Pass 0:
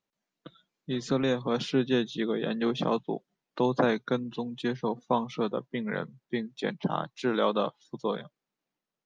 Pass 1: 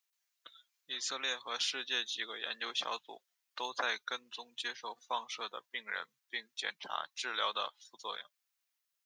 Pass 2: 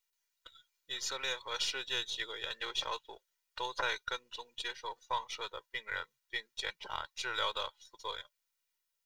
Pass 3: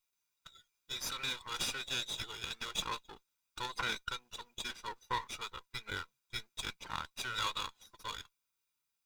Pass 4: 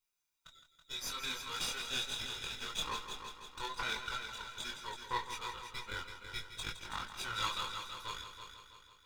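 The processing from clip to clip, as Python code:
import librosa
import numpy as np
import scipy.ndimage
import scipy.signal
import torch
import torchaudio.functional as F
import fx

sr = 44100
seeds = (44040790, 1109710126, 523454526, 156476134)

y1 = scipy.signal.sosfilt(scipy.signal.butter(2, 1400.0, 'highpass', fs=sr, output='sos'), x)
y1 = fx.high_shelf(y1, sr, hz=6000.0, db=12.0)
y2 = np.where(y1 < 0.0, 10.0 ** (-3.0 / 20.0) * y1, y1)
y2 = y2 + 0.6 * np.pad(y2, (int(2.1 * sr / 1000.0), 0))[:len(y2)]
y3 = fx.lower_of_two(y2, sr, delay_ms=0.82)
y3 = y3 * 10.0 ** (1.0 / 20.0)
y4 = fx.chorus_voices(y3, sr, voices=6, hz=0.28, base_ms=23, depth_ms=4.2, mix_pct=45)
y4 = fx.echo_heads(y4, sr, ms=164, heads='first and second', feedback_pct=53, wet_db=-10.5)
y4 = y4 * 10.0 ** (1.5 / 20.0)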